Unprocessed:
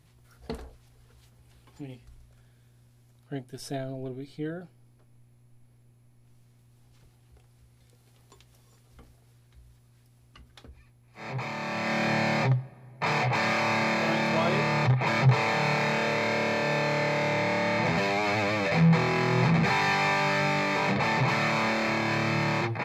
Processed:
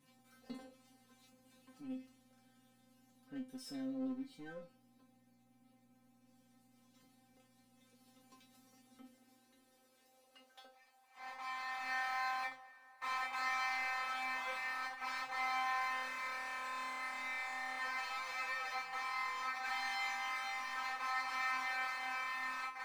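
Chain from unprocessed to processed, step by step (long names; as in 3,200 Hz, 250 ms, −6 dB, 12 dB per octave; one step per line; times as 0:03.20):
high-pass filter sweep 190 Hz → 1,100 Hz, 0:08.75–0:11.51
power curve on the samples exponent 0.7
tuned comb filter 260 Hz, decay 0.26 s, harmonics all, mix 100%
level −5 dB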